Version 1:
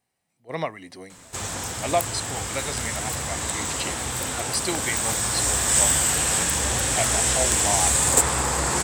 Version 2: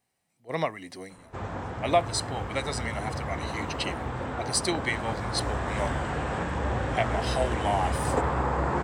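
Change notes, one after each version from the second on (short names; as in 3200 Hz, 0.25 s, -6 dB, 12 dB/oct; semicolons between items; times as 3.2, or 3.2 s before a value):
background: add LPF 1300 Hz 12 dB/oct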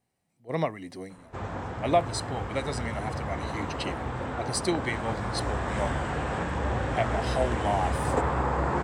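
speech: add tilt shelf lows +4.5 dB, about 650 Hz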